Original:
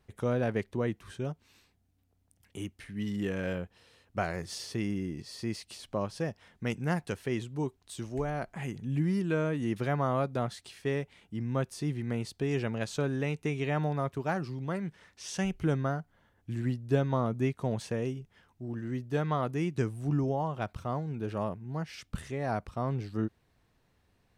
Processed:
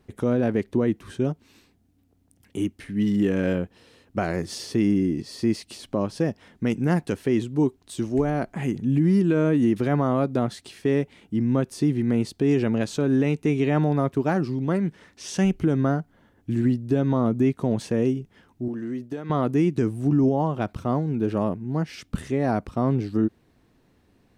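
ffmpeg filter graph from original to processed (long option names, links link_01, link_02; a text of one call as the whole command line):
ffmpeg -i in.wav -filter_complex "[0:a]asettb=1/sr,asplit=3[link_01][link_02][link_03];[link_01]atrim=end=18.684[link_04];[link_02]atrim=start=18.68:end=19.3,asetpts=PTS-STARTPTS,afade=type=in:duration=0.004:curve=qsin,afade=type=out:start_time=0.616:duration=0.004:curve=qsin,agate=range=-33dB:threshold=-43dB:ratio=3:release=100:detection=peak,equalizer=frequency=76:width=0.55:gain=-11,acompressor=threshold=-39dB:ratio=8:attack=3.2:release=140:knee=1:detection=peak[link_05];[link_03]atrim=start=19.296[link_06];[link_04][link_05]acrossfade=duration=0.004:curve1=hsin:curve2=qsin[link_07];[link_07][link_06]acrossfade=duration=0.004:curve1=qsin:curve2=hsin,equalizer=frequency=280:width=1:gain=10,alimiter=limit=-17.5dB:level=0:latency=1:release=64,volume=5dB" out.wav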